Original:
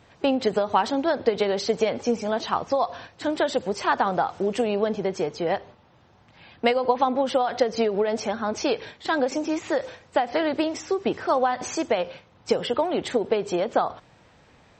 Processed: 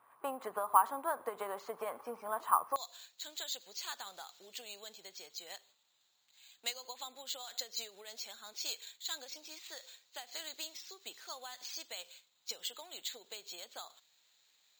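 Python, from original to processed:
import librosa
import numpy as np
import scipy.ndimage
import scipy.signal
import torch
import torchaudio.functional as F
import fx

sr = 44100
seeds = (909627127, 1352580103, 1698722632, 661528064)

y = fx.bandpass_q(x, sr, hz=fx.steps((0.0, 1100.0), (2.76, 4100.0)), q=5.6)
y = np.repeat(y[::4], 4)[:len(y)]
y = F.gain(torch.from_numpy(y), 1.5).numpy()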